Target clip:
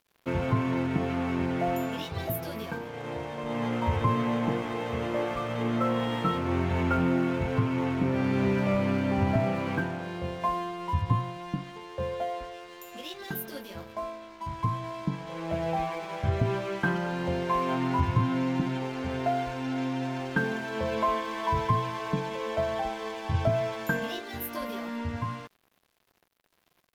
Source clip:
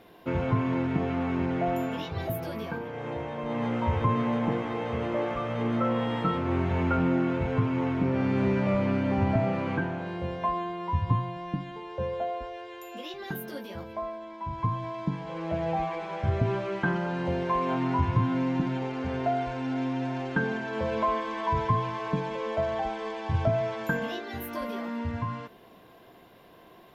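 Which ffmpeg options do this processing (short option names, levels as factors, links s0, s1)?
-af "highshelf=f=3500:g=7.5,aeval=exprs='sgn(val(0))*max(abs(val(0))-0.00422,0)':c=same"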